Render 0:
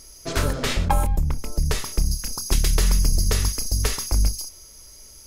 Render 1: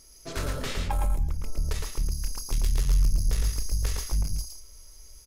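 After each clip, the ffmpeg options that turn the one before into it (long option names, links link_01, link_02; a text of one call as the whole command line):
ffmpeg -i in.wav -af "asubboost=boost=3.5:cutoff=71,asoftclip=type=tanh:threshold=-11.5dB,aecho=1:1:112:0.631,volume=-8.5dB" out.wav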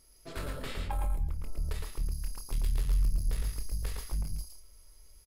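ffmpeg -i in.wav -filter_complex "[0:a]equalizer=frequency=6100:width_type=o:width=0.47:gain=-11,asplit=2[link_01][link_02];[link_02]adelay=26,volume=-12dB[link_03];[link_01][link_03]amix=inputs=2:normalize=0,volume=-6.5dB" out.wav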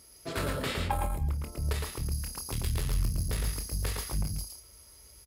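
ffmpeg -i in.wav -af "highpass=frequency=60:width=0.5412,highpass=frequency=60:width=1.3066,volume=8dB" out.wav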